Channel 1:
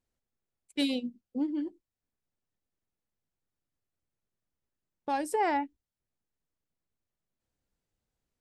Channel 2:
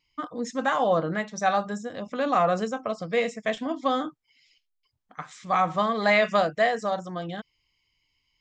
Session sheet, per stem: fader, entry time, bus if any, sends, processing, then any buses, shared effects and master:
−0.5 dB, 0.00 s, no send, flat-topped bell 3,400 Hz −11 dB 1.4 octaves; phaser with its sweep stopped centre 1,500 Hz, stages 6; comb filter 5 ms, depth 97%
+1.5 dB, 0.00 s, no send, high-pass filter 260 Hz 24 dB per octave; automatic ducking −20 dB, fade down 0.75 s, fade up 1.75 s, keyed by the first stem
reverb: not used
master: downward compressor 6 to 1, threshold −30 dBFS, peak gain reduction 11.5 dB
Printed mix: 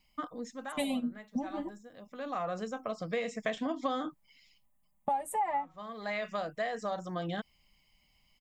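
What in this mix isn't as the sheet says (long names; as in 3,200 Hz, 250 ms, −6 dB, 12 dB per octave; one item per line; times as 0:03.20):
stem 1 −0.5 dB → +10.5 dB
stem 2: missing high-pass filter 260 Hz 24 dB per octave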